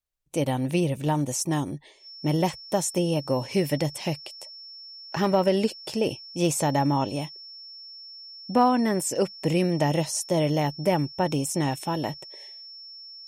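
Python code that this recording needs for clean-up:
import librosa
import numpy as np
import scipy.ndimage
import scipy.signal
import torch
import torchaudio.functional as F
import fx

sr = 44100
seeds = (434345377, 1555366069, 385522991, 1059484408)

y = fx.fix_declip(x, sr, threshold_db=-11.5)
y = fx.notch(y, sr, hz=5400.0, q=30.0)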